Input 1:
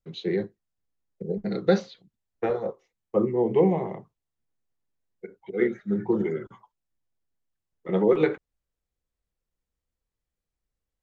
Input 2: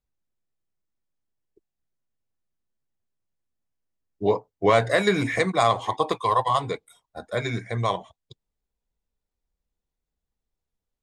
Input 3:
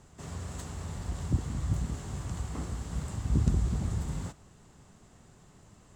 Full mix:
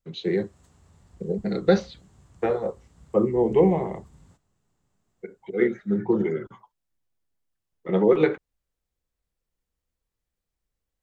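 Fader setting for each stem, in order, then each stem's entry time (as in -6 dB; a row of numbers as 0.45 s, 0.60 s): +2.0 dB, mute, -18.5 dB; 0.00 s, mute, 0.05 s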